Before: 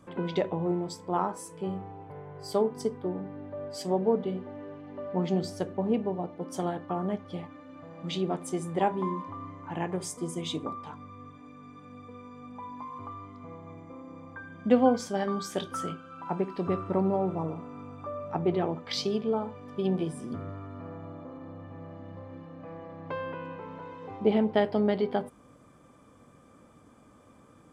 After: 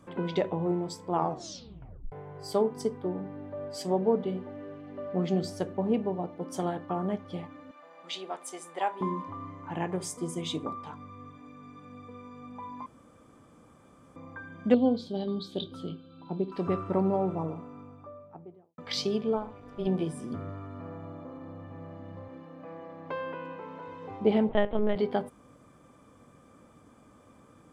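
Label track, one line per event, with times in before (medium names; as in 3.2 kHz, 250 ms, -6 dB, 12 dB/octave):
1.120000	1.120000	tape stop 1.00 s
4.490000	5.470000	band-stop 910 Hz, Q 6.1
7.710000	9.010000	high-pass 710 Hz
12.860000	14.160000	room tone
14.740000	16.520000	FFT filter 360 Hz 0 dB, 1.9 kHz -22 dB, 4 kHz +8 dB, 5.8 kHz -20 dB
17.180000	18.780000	studio fade out
19.360000	19.870000	AM modulator 210 Hz, depth 70%
22.280000	23.880000	high-pass 190 Hz
24.490000	24.960000	LPC vocoder at 8 kHz pitch kept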